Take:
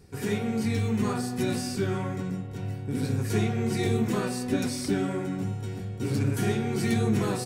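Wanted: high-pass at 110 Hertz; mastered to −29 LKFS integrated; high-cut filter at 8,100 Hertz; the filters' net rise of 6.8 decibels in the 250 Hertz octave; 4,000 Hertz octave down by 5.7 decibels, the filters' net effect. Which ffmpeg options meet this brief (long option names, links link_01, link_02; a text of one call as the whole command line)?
ffmpeg -i in.wav -af "highpass=110,lowpass=8100,equalizer=frequency=250:width_type=o:gain=8.5,equalizer=frequency=4000:width_type=o:gain=-7,volume=-5dB" out.wav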